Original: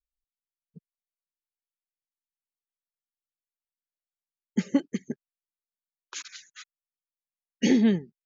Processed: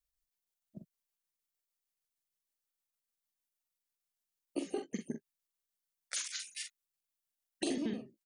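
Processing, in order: trilling pitch shifter +6 st, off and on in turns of 77 ms; high shelf 4000 Hz +7.5 dB; compressor 10:1, threshold -34 dBFS, peak gain reduction 17 dB; early reflections 44 ms -6 dB, 62 ms -18 dB

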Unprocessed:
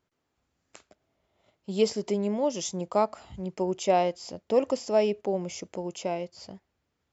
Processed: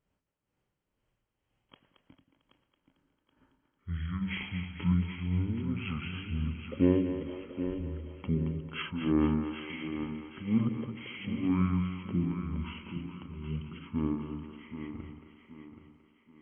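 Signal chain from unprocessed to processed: tremolo triangle 4.8 Hz, depth 90%; thinning echo 0.337 s, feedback 40%, high-pass 260 Hz, level -9 dB; wide varispeed 0.434×; notch 690 Hz, Q 12; split-band echo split 320 Hz, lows 88 ms, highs 0.224 s, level -8 dB

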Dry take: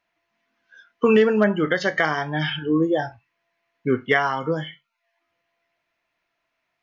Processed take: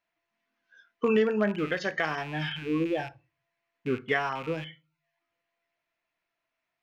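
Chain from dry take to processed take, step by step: rattling part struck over -36 dBFS, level -24 dBFS; on a send: reverb RT60 0.35 s, pre-delay 3 ms, DRR 19 dB; on the sum: gain -8 dB

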